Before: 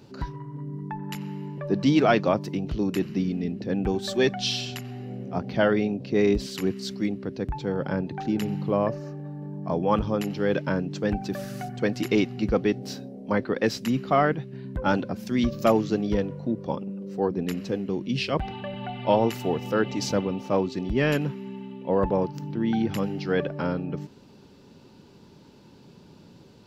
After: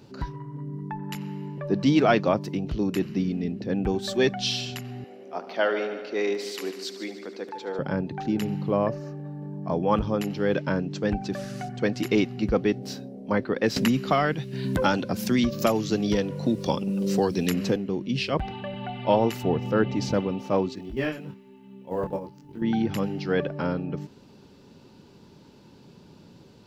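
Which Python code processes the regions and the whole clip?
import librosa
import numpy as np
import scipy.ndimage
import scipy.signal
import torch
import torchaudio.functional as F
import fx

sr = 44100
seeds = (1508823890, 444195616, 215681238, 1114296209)

y = fx.chain(x, sr, fx.bessel_highpass(hz=460.0, order=4),
    fx.echo_heads(ms=74, heads='first and second', feedback_pct=59, wet_db=-14), at=(5.04, 7.79))
y = fx.chain(y, sr, fx.lowpass(hz=7500.0, slope=12),
    fx.high_shelf(hz=5600.0, db=4.0), at=(10.59, 11.98))
y = fx.chain(y, sr, fx.high_shelf(hz=3300.0, db=10.0),
    fx.band_squash(depth_pct=100), at=(13.76, 17.76))
y = fx.chain(y, sr, fx.lowpass(hz=3400.0, slope=6),
    fx.low_shelf(hz=160.0, db=8.5), at=(19.43, 20.14))
y = fx.chain(y, sr, fx.level_steps(step_db=11),
    fx.quant_companded(bits=8),
    fx.detune_double(cents=17), at=(20.75, 22.62))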